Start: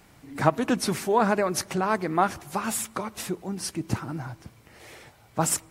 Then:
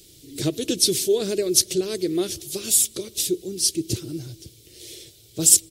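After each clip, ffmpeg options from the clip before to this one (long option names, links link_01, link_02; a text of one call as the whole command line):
ffmpeg -i in.wav -af "firequalizer=gain_entry='entry(110,0);entry(230,-9);entry(350,8);entry(860,-28);entry(3400,11)':delay=0.05:min_phase=1,volume=1.5dB" out.wav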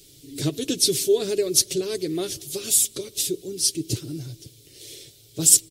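ffmpeg -i in.wav -af "aecho=1:1:7.2:0.46,volume=-1.5dB" out.wav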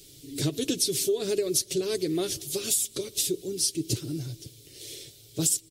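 ffmpeg -i in.wav -af "acompressor=threshold=-22dB:ratio=12" out.wav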